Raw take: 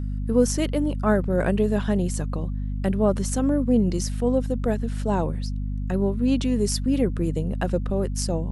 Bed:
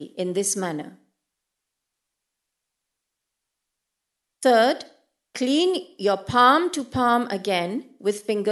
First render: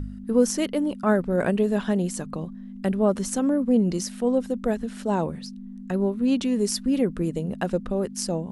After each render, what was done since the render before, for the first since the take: de-hum 50 Hz, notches 3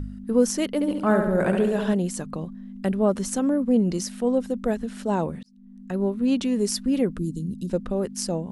0.74–1.94 flutter echo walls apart 11.9 m, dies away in 0.82 s; 5.43–6.08 fade in; 7.18–7.7 inverse Chebyshev band-stop 790–1600 Hz, stop band 70 dB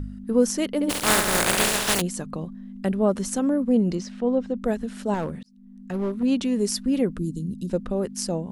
0.89–2 spectral contrast lowered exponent 0.25; 3.95–4.62 air absorption 140 m; 5.14–6.23 hard clip -22 dBFS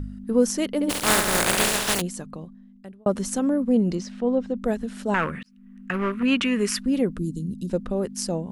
1.77–3.06 fade out; 5.14–6.79 band shelf 1800 Hz +15 dB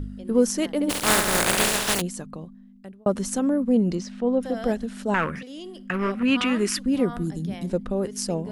add bed -18.5 dB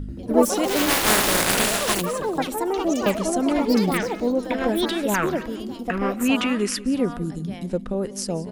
feedback echo 0.182 s, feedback 35%, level -18.5 dB; echoes that change speed 87 ms, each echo +5 st, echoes 3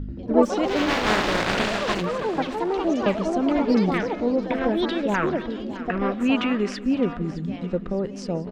air absorption 180 m; feedback echo 0.613 s, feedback 43%, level -15.5 dB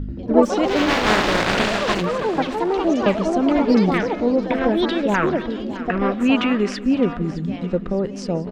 gain +4 dB; limiter -2 dBFS, peak gain reduction 2.5 dB

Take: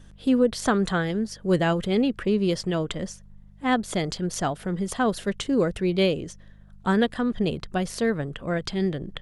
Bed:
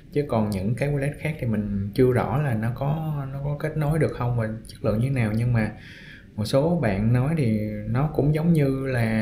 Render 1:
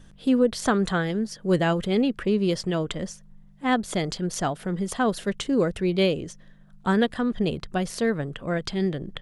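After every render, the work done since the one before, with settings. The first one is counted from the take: de-hum 50 Hz, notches 2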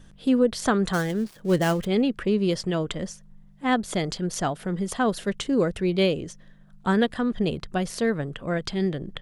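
0.93–1.87 switching dead time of 0.098 ms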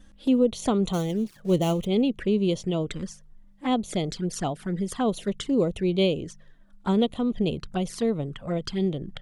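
envelope flanger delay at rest 4.3 ms, full sweep at -22.5 dBFS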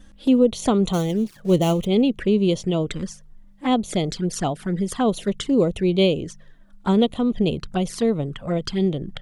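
gain +4.5 dB

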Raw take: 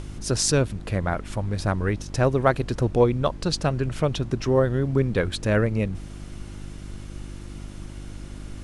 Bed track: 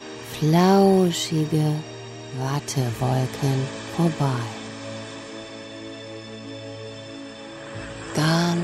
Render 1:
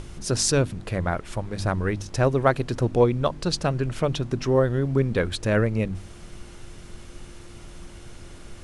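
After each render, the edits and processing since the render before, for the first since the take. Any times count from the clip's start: de-hum 50 Hz, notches 6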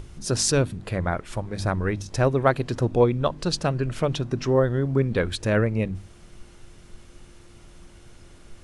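noise print and reduce 6 dB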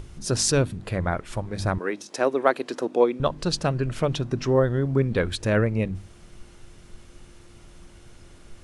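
1.78–3.2 HPF 260 Hz 24 dB/oct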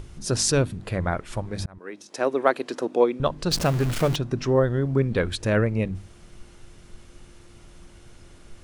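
1.66–2.35 fade in; 3.51–4.16 zero-crossing step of -26 dBFS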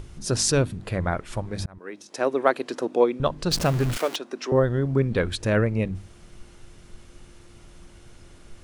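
3.97–4.52 Bessel high-pass 420 Hz, order 8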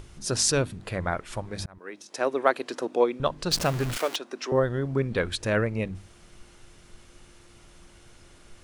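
low shelf 440 Hz -6 dB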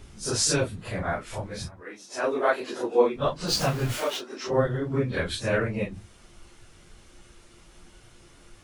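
phase scrambler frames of 0.1 s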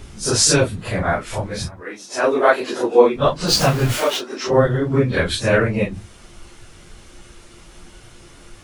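gain +9 dB; limiter -1 dBFS, peak gain reduction 1.5 dB

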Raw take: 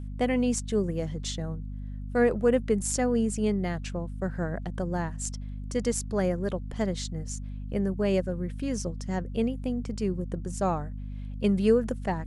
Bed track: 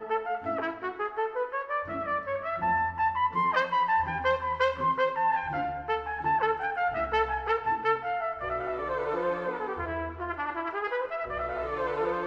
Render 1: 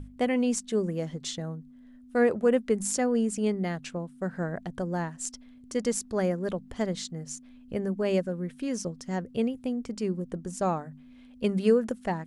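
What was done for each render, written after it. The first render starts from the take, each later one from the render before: notches 50/100/150/200 Hz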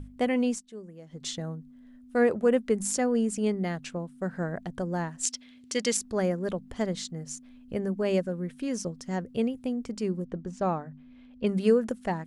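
0.47–1.25 dip -15.5 dB, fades 0.16 s; 5.23–5.97 weighting filter D; 10.25–11.47 air absorption 140 m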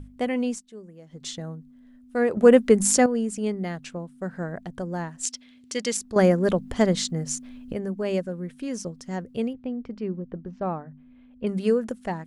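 2.37–3.06 gain +9 dB; 6.16–7.73 gain +9 dB; 9.53–11.47 air absorption 290 m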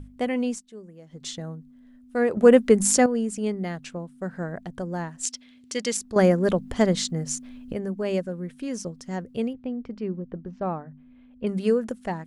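nothing audible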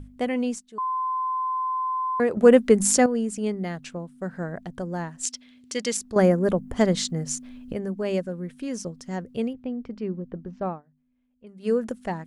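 0.78–2.2 bleep 1030 Hz -23.5 dBFS; 6.13–6.76 bell 3900 Hz -3 dB -> -13.5 dB 1.8 oct; 10.66–11.75 dip -19.5 dB, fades 0.16 s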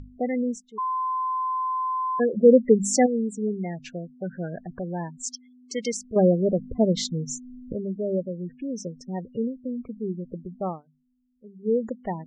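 spectral gate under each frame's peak -15 dB strong; LPF 7100 Hz 24 dB/oct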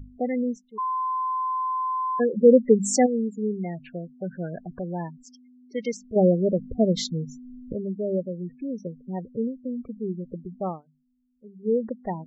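low-pass opened by the level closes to 1300 Hz, open at -17.5 dBFS; spectral gate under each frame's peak -20 dB strong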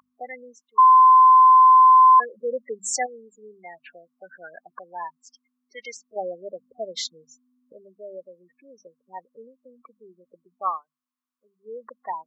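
resonant high-pass 1100 Hz, resonance Q 9.3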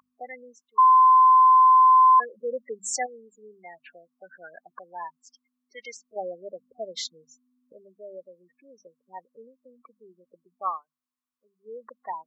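gain -3 dB

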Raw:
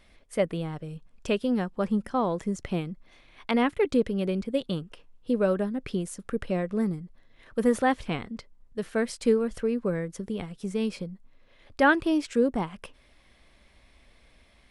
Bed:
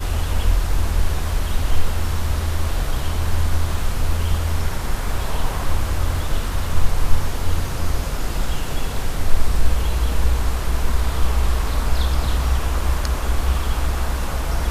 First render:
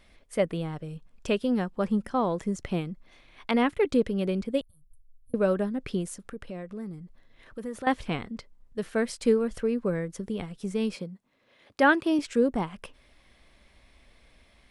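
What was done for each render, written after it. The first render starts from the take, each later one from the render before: 4.61–5.34 inverse Chebyshev band-stop 170–6000 Hz; 6.15–7.87 compressor 2:1, threshold -42 dBFS; 10.95–12.19 HPF 150 Hz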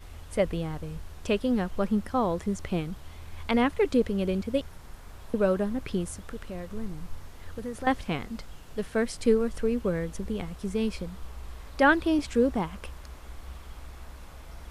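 add bed -22.5 dB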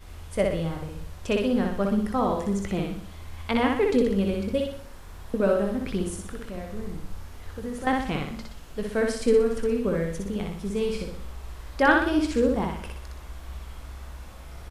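doubler 20 ms -11 dB; feedback echo 61 ms, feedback 46%, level -3 dB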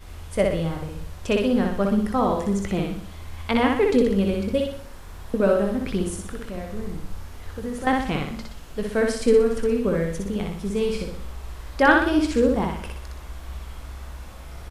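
gain +3 dB

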